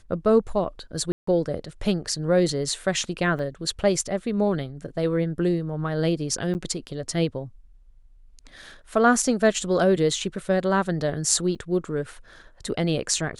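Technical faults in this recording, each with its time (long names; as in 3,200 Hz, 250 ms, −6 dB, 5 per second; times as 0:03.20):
0:01.12–0:01.27: drop-out 154 ms
0:03.39: drop-out 2.3 ms
0:06.54–0:06.55: drop-out 9.2 ms
0:11.55–0:11.56: drop-out 5.1 ms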